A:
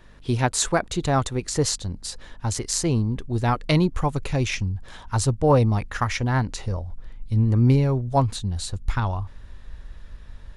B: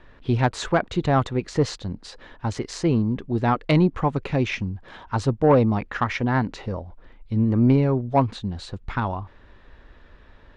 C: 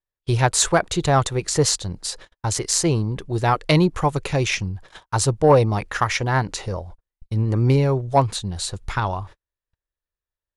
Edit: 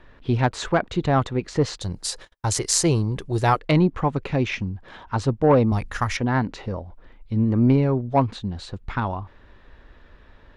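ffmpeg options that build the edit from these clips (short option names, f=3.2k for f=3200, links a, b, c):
-filter_complex "[1:a]asplit=3[a][b][c];[a]atrim=end=1.812[d];[2:a]atrim=start=1.808:end=3.592[e];[b]atrim=start=3.588:end=5.722[f];[0:a]atrim=start=5.718:end=6.172[g];[c]atrim=start=6.168[h];[d][e]acrossfade=d=0.004:c1=hsin:c2=hsin[i];[i][f]acrossfade=d=0.004:c1=hsin:c2=hsin[j];[j][g]acrossfade=d=0.004:c1=hsin:c2=hsin[k];[k][h]acrossfade=d=0.004:c1=hsin:c2=hsin"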